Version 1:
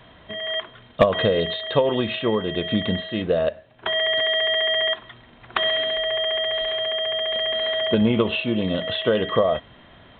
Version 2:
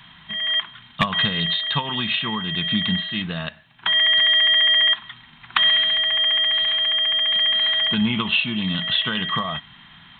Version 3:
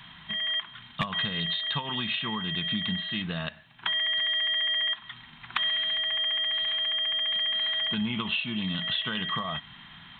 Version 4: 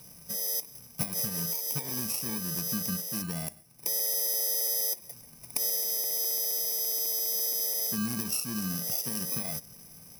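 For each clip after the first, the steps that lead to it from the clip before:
EQ curve 110 Hz 0 dB, 160 Hz +11 dB, 560 Hz -17 dB, 840 Hz +6 dB, 3300 Hz +13 dB; gain -5.5 dB
compressor 2.5:1, threshold -28 dBFS, peak gain reduction 10 dB; gain -1.5 dB
FFT order left unsorted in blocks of 32 samples; gain -2 dB

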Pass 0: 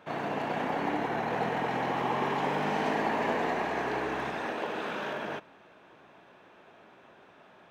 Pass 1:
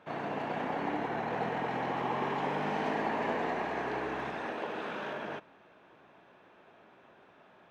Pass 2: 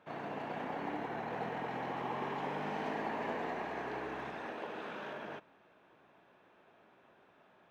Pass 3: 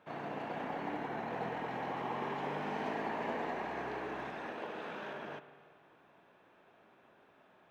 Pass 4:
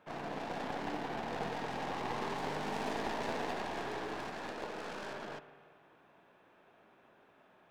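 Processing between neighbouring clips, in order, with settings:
high shelf 6100 Hz -8.5 dB; gain -3 dB
short-mantissa float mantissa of 6-bit; gain -5.5 dB
spring tank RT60 1.9 s, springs 48 ms, chirp 70 ms, DRR 11.5 dB
tracing distortion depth 0.26 ms

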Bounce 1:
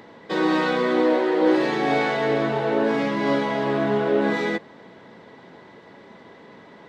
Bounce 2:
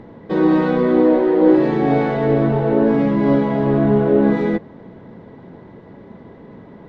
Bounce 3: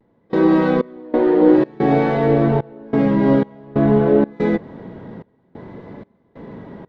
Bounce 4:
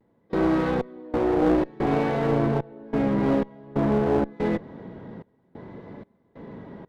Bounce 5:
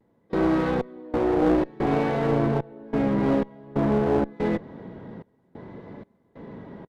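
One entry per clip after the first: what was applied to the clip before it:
tilt -4.5 dB/oct
in parallel at -2 dB: compressor, threshold -24 dBFS, peak gain reduction 15 dB; on the sum: step gate "..xxx..xxx.xxxxx" 92 bpm -24 dB; vibrato 0.54 Hz 35 cents; gain -1 dB
one-sided clip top -20 dBFS; gain -5 dB
downsampling 32000 Hz

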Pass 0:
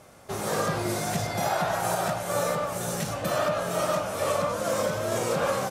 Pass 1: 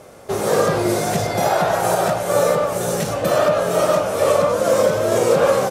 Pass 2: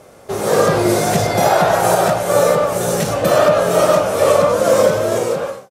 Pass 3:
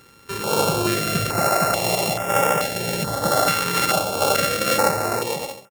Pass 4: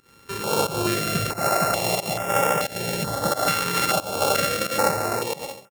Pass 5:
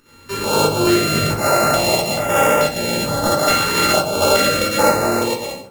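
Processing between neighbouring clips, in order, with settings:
bell 450 Hz +8 dB 0.97 oct; gain +6 dB
ending faded out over 0.84 s; AGC; gain -1 dB
sample sorter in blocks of 32 samples; stepped notch 2.3 Hz 670–4200 Hz; gain -5 dB
pump 90 bpm, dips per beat 1, -18 dB, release 0.168 s; gain -2 dB
shoebox room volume 200 m³, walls furnished, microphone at 2.6 m; gain +1.5 dB

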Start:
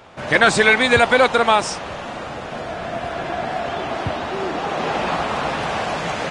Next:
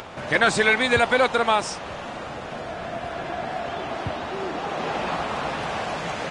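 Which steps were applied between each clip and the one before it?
upward compressor, threshold -24 dBFS; gain -5 dB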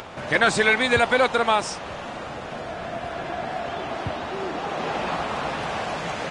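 nothing audible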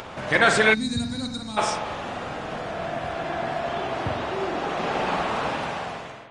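ending faded out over 0.86 s; spring tank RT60 1.2 s, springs 46 ms, chirp 25 ms, DRR 4 dB; spectral gain 0.74–1.57, 320–3700 Hz -23 dB

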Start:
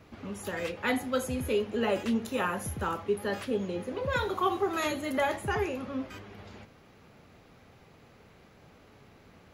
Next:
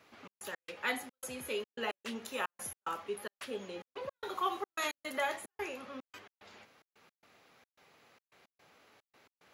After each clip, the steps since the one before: HPF 980 Hz 6 dB/oct; step gate "xx.x.xxx.xxx.x.x" 110 bpm -60 dB; gain -1.5 dB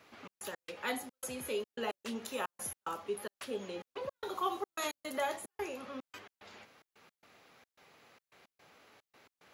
dynamic EQ 2000 Hz, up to -7 dB, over -50 dBFS, Q 0.81; gain +2 dB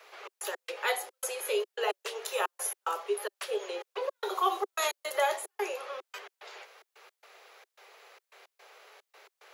steep high-pass 380 Hz 72 dB/oct; gain +7 dB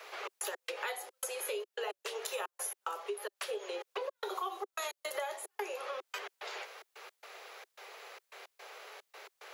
compressor 6:1, threshold -41 dBFS, peak gain reduction 18 dB; gain +5 dB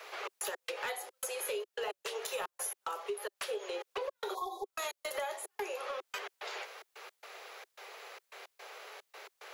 hard clip -31 dBFS, distortion -18 dB; spectral repair 4.37–4.65, 1100–3300 Hz after; gain +1 dB

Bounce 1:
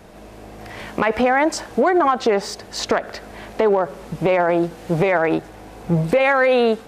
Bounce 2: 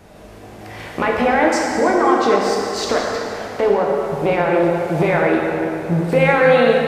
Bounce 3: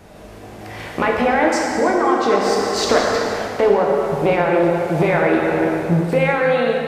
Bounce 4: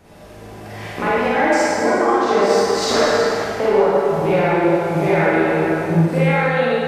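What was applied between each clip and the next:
plate-style reverb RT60 2.8 s, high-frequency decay 0.75×, DRR -2.5 dB; gain -2 dB
vocal rider within 5 dB 0.5 s
Schroeder reverb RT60 0.72 s, DRR -5.5 dB; gain -6 dB

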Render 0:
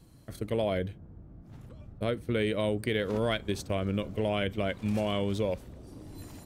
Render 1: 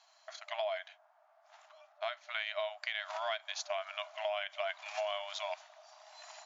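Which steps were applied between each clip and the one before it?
FFT band-pass 600–7300 Hz; compressor 6:1, threshold -37 dBFS, peak gain reduction 10 dB; gain +4 dB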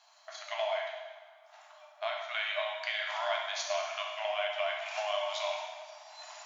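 plate-style reverb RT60 1.4 s, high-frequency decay 0.95×, DRR -1.5 dB; gain +1 dB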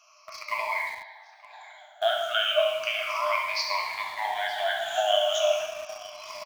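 moving spectral ripple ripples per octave 0.9, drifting -0.34 Hz, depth 24 dB; echo 0.914 s -19.5 dB; in parallel at -12 dB: bit-crush 6-bit

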